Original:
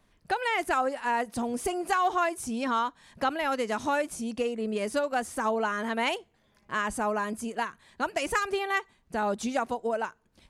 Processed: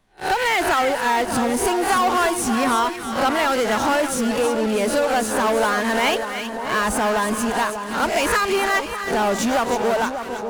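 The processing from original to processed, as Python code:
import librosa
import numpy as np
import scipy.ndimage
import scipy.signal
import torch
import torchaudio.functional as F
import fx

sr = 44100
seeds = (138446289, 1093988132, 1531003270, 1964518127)

p1 = fx.spec_swells(x, sr, rise_s=0.31)
p2 = fx.fuzz(p1, sr, gain_db=36.0, gate_db=-43.0)
p3 = p1 + (p2 * 10.0 ** (-9.0 / 20.0))
y = fx.echo_split(p3, sr, split_hz=1300.0, low_ms=592, high_ms=321, feedback_pct=52, wet_db=-8)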